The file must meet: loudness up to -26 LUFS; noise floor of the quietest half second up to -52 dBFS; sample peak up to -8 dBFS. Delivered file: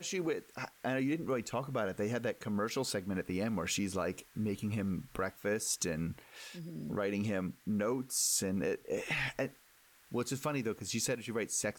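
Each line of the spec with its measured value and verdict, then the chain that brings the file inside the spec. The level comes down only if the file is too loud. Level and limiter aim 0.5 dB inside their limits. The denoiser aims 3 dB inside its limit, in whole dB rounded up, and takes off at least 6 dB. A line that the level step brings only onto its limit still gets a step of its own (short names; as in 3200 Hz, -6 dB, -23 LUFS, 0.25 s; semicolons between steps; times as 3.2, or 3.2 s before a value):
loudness -35.5 LUFS: OK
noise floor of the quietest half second -64 dBFS: OK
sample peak -19.5 dBFS: OK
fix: none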